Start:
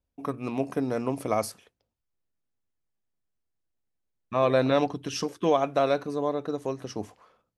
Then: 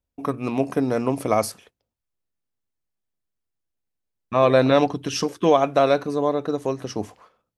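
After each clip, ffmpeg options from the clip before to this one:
ffmpeg -i in.wav -af "agate=range=-7dB:threshold=-56dB:ratio=16:detection=peak,volume=6dB" out.wav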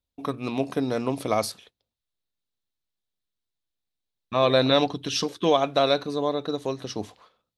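ffmpeg -i in.wav -af "equalizer=frequency=3800:width_type=o:width=0.62:gain=12.5,volume=-4dB" out.wav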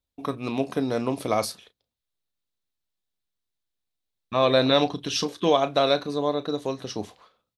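ffmpeg -i in.wav -filter_complex "[0:a]asplit=2[link_01][link_02];[link_02]adelay=34,volume=-14dB[link_03];[link_01][link_03]amix=inputs=2:normalize=0" out.wav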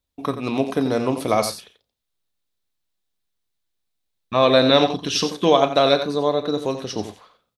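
ffmpeg -i in.wav -af "aecho=1:1:88:0.316,volume=4.5dB" out.wav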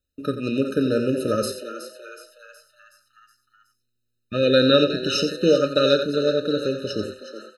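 ffmpeg -i in.wav -filter_complex "[0:a]asplit=7[link_01][link_02][link_03][link_04][link_05][link_06][link_07];[link_02]adelay=370,afreqshift=120,volume=-11dB[link_08];[link_03]adelay=740,afreqshift=240,volume=-16.7dB[link_09];[link_04]adelay=1110,afreqshift=360,volume=-22.4dB[link_10];[link_05]adelay=1480,afreqshift=480,volume=-28dB[link_11];[link_06]adelay=1850,afreqshift=600,volume=-33.7dB[link_12];[link_07]adelay=2220,afreqshift=720,volume=-39.4dB[link_13];[link_01][link_08][link_09][link_10][link_11][link_12][link_13]amix=inputs=7:normalize=0,afftfilt=real='re*eq(mod(floor(b*sr/1024/610),2),0)':imag='im*eq(mod(floor(b*sr/1024/610),2),0)':win_size=1024:overlap=0.75" out.wav

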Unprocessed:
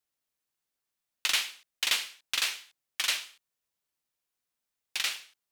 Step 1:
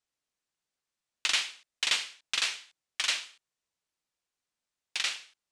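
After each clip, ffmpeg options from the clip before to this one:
ffmpeg -i in.wav -af "lowpass=frequency=8800:width=0.5412,lowpass=frequency=8800:width=1.3066" out.wav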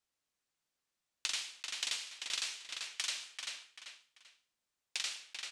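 ffmpeg -i in.wav -filter_complex "[0:a]aecho=1:1:389|778|1167:0.266|0.0772|0.0224,acrossover=split=1100|4100[link_01][link_02][link_03];[link_01]acompressor=threshold=-58dB:ratio=4[link_04];[link_02]acompressor=threshold=-44dB:ratio=4[link_05];[link_03]acompressor=threshold=-37dB:ratio=4[link_06];[link_04][link_05][link_06]amix=inputs=3:normalize=0" out.wav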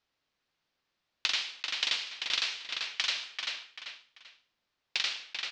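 ffmpeg -i in.wav -af "lowpass=frequency=4900:width=0.5412,lowpass=frequency=4900:width=1.3066,volume=8.5dB" out.wav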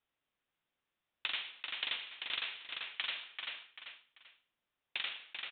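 ffmpeg -i in.wav -af "aresample=8000,aresample=44100,volume=-5.5dB" out.wav

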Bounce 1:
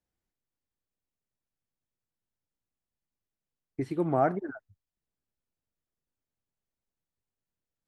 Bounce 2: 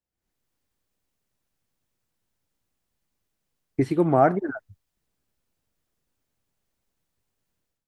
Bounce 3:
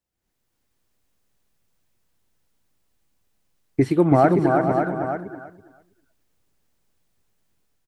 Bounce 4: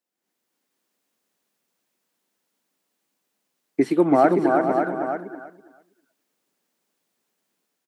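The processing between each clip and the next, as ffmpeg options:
ffmpeg -i in.wav -af "dynaudnorm=framelen=110:gausssize=5:maxgain=16dB,volume=-4.5dB" out.wav
ffmpeg -i in.wav -filter_complex "[0:a]asplit=2[link_01][link_02];[link_02]aecho=0:1:451|559:0.224|0.335[link_03];[link_01][link_03]amix=inputs=2:normalize=0,alimiter=limit=-9.5dB:level=0:latency=1:release=166,asplit=2[link_04][link_05];[link_05]aecho=0:1:327|654|981:0.631|0.114|0.0204[link_06];[link_04][link_06]amix=inputs=2:normalize=0,volume=4dB" out.wav
ffmpeg -i in.wav -af "highpass=frequency=210:width=0.5412,highpass=frequency=210:width=1.3066" out.wav

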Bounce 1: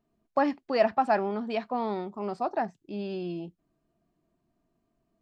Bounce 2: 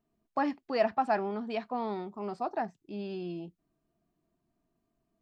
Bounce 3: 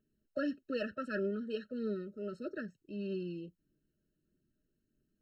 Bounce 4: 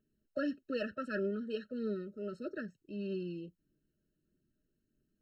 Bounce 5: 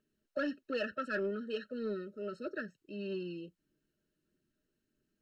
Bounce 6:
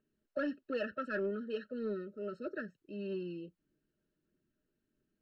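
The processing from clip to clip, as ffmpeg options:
ffmpeg -i in.wav -af "bandreject=frequency=560:width=12,volume=-3.5dB" out.wav
ffmpeg -i in.wav -af "aphaser=in_gain=1:out_gain=1:delay=2.2:decay=0.32:speed=1.6:type=triangular,afftfilt=real='re*eq(mod(floor(b*sr/1024/630),2),0)':imag='im*eq(mod(floor(b*sr/1024/630),2),0)':win_size=1024:overlap=0.75,volume=-2dB" out.wav
ffmpeg -i in.wav -af anull out.wav
ffmpeg -i in.wav -filter_complex "[0:a]asplit=2[link_01][link_02];[link_02]highpass=frequency=720:poles=1,volume=10dB,asoftclip=type=tanh:threshold=-24dB[link_03];[link_01][link_03]amix=inputs=2:normalize=0,lowpass=frequency=4700:poles=1,volume=-6dB" out.wav
ffmpeg -i in.wav -af "highshelf=frequency=3400:gain=-11.5" out.wav

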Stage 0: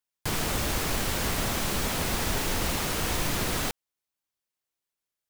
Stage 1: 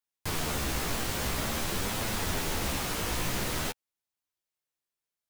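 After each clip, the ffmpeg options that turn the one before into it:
ffmpeg -i in.wav -af "flanger=delay=8.7:depth=9.4:regen=3:speed=0.49:shape=triangular" out.wav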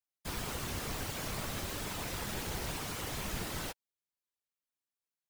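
ffmpeg -i in.wav -af "afftfilt=real='hypot(re,im)*cos(2*PI*random(0))':imag='hypot(re,im)*sin(2*PI*random(1))':win_size=512:overlap=0.75,volume=-1dB" out.wav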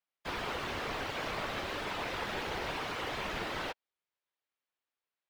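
ffmpeg -i in.wav -filter_complex "[0:a]acrossover=split=320 4000:gain=0.251 1 0.0794[link_01][link_02][link_03];[link_01][link_02][link_03]amix=inputs=3:normalize=0,volume=6dB" out.wav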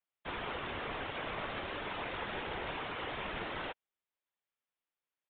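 ffmpeg -i in.wav -af "aresample=8000,aresample=44100,volume=-2.5dB" out.wav

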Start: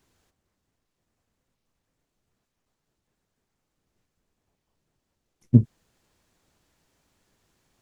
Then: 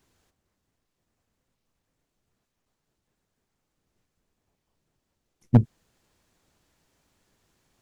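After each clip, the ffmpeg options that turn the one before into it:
ffmpeg -i in.wav -af "aeval=exprs='0.531*(abs(mod(val(0)/0.531+3,4)-2)-1)':channel_layout=same" out.wav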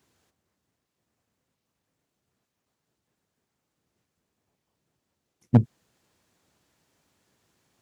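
ffmpeg -i in.wav -af "highpass=86" out.wav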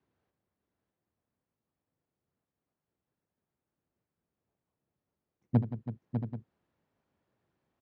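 ffmpeg -i in.wav -filter_complex "[0:a]acrossover=split=380|760[link_01][link_02][link_03];[link_03]adynamicsmooth=sensitivity=4.5:basefreq=2300[link_04];[link_01][link_02][link_04]amix=inputs=3:normalize=0,aecho=1:1:76|174|328|599|677|784:0.224|0.211|0.224|0.422|0.224|0.178,volume=-8.5dB" out.wav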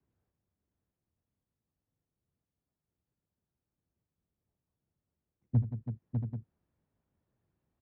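ffmpeg -i in.wav -filter_complex "[0:a]aemphasis=mode=reproduction:type=bsi,acrossover=split=140[link_01][link_02];[link_02]acompressor=threshold=-30dB:ratio=2.5[link_03];[link_01][link_03]amix=inputs=2:normalize=0,volume=-6.5dB" out.wav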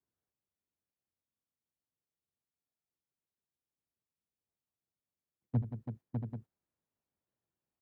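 ffmpeg -i in.wav -af "agate=range=-12dB:threshold=-45dB:ratio=16:detection=peak,lowshelf=frequency=220:gain=-12,volume=4.5dB" out.wav

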